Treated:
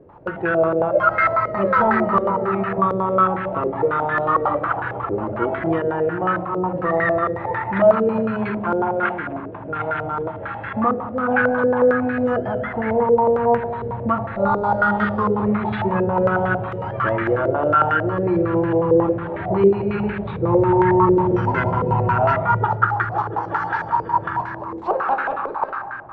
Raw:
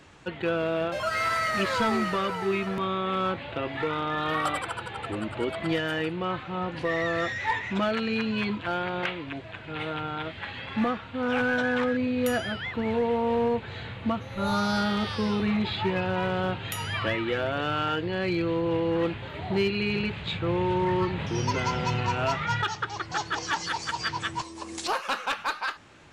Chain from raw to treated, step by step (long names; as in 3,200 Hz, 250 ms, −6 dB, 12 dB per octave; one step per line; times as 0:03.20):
on a send at −4 dB: convolution reverb RT60 2.1 s, pre-delay 4 ms
on the sum: low-pass on a step sequencer 11 Hz 470–1,600 Hz
level +3 dB